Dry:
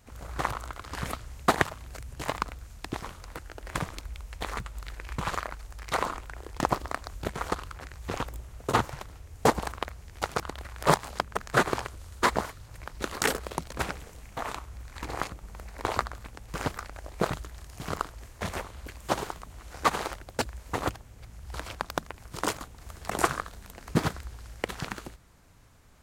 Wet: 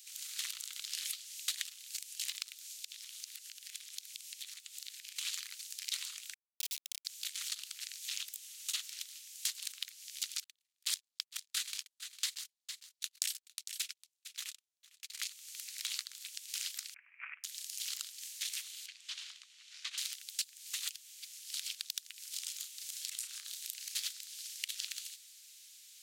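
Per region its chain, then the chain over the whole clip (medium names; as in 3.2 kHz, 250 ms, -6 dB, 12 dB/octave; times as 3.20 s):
2.68–5.16 s: high-pass 760 Hz 6 dB/octave + compression 4:1, threshold -50 dBFS
6.34–7.05 s: Chebyshev band-pass 490–1000 Hz, order 5 + word length cut 6-bit, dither none
10.44–15.22 s: gate -34 dBFS, range -44 dB + delay 454 ms -21.5 dB
16.94–17.44 s: steep low-pass 2.5 kHz 96 dB/octave + comb 6 ms, depth 33%
18.86–19.98 s: tape spacing loss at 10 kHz 23 dB + compression 1.5:1, threshold -35 dBFS
22.20–23.94 s: compression, threshold -38 dBFS + doubling 33 ms -9.5 dB
whole clip: inverse Chebyshev high-pass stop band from 540 Hz, stop band 80 dB; compression 3:1, threshold -51 dBFS; trim +13 dB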